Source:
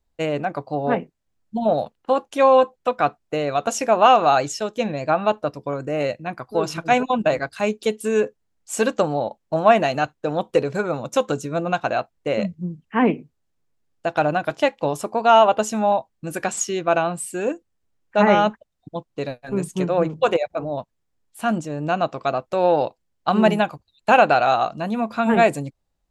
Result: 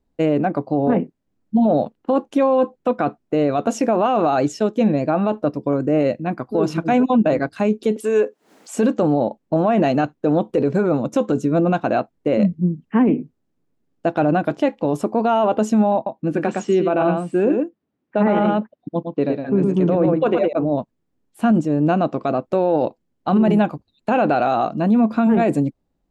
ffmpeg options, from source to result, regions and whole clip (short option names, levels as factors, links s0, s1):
-filter_complex "[0:a]asettb=1/sr,asplit=3[s0][s1][s2];[s0]atrim=end=7.964[s3];[s1]atrim=start=7.96:end=8.75,asetpts=PTS-STARTPTS,afade=t=in:d=0.004:c=qsin,afade=t=out:st=0.786:d=0.004:c=qsin,highpass=490,acompressor=mode=upward:threshold=0.0501:ratio=2.5:attack=3.2:release=140:knee=2.83:detection=peak[s4];[s2]atrim=start=8.746[s5];[s3][s4]acrossfade=d=0.004:c1=hsin:c2=qsin[s6];[s6][s5]acrossfade=d=0.004:c1=qsin:c2=hsin,asettb=1/sr,asplit=3[s7][s8][s9];[s7]atrim=end=15.954[s10];[s8]atrim=start=15.95:end=20.53,asetpts=PTS-STARTPTS,afade=t=in:d=0.004:c=qsin,afade=t=out:st=4.576:d=0.004:c=qsin,highpass=120,lowpass=4000,aecho=1:1:112:0.501,atrim=end_sample=201978[s11];[s9]atrim=start=20.526[s12];[s10][s11]acrossfade=d=0.004:c1=hsin:c2=qsin[s13];[s13][s12]acrossfade=d=0.004:c1=qsin:c2=hsin,equalizer=f=260:t=o:w=1.8:g=13,alimiter=limit=0.355:level=0:latency=1:release=18,highshelf=f=4000:g=-7.5"